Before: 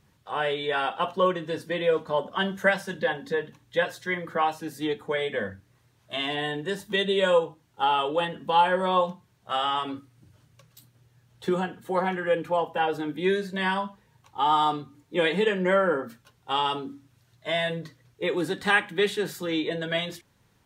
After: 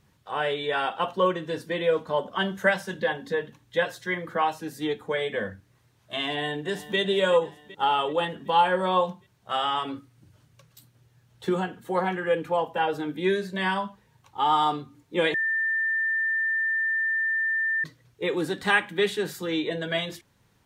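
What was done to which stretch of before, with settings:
6.27–6.98 echo throw 0.38 s, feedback 60%, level -15 dB
15.34–17.84 bleep 1790 Hz -22.5 dBFS

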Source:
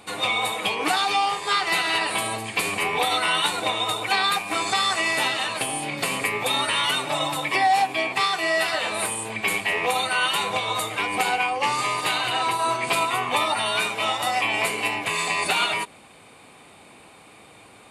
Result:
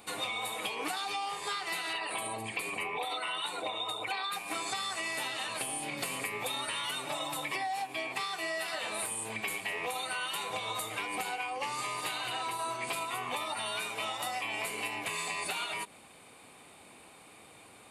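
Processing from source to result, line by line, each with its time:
1.93–4.33 formant sharpening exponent 1.5
whole clip: high shelf 9800 Hz +10 dB; compressor, threshold -26 dBFS; notches 50/100/150/200 Hz; gain -6.5 dB

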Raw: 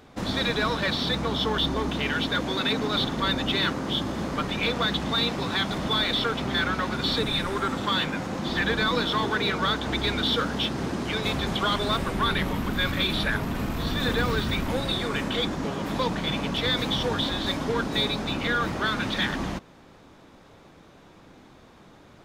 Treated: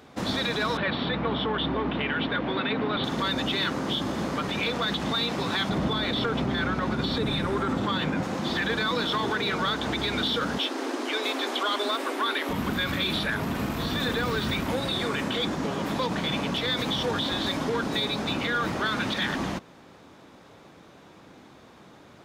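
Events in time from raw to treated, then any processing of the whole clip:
0.77–3.04 LPF 3100 Hz 24 dB/oct
5.69–8.23 tilt -2 dB/oct
10.58–12.49 steep high-pass 250 Hz 96 dB/oct
whole clip: HPF 43 Hz; low shelf 64 Hz -11.5 dB; limiter -19.5 dBFS; gain +1.5 dB

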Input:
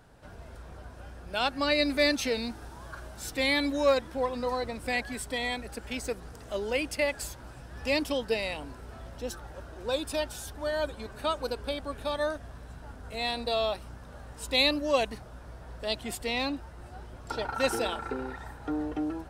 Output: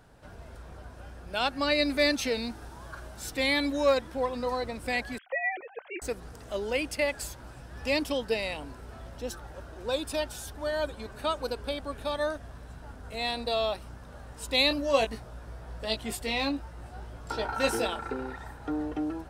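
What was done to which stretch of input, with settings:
5.18–6.02 sine-wave speech
14.69–17.86 doubler 18 ms -6 dB

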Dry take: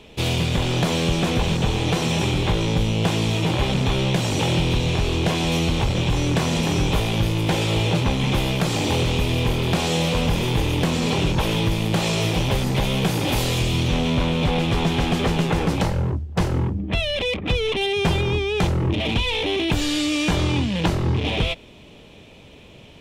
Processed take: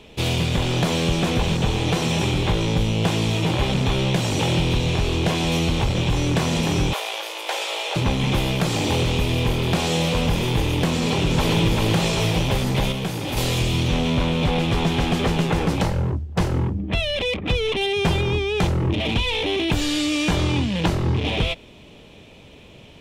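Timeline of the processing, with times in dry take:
6.93–7.96 inverse Chebyshev high-pass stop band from 160 Hz, stop band 60 dB
10.91–11.55 echo throw 0.39 s, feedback 55%, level -3 dB
12.92–13.37 gain -5 dB

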